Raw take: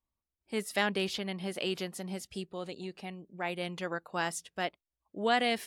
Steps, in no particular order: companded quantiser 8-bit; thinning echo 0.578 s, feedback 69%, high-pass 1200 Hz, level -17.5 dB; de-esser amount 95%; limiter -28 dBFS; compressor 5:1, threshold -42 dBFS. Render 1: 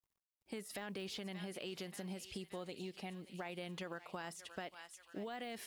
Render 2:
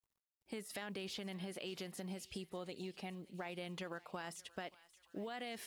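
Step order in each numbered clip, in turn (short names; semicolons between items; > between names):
thinning echo > de-esser > limiter > compressor > companded quantiser; limiter > de-esser > compressor > thinning echo > companded quantiser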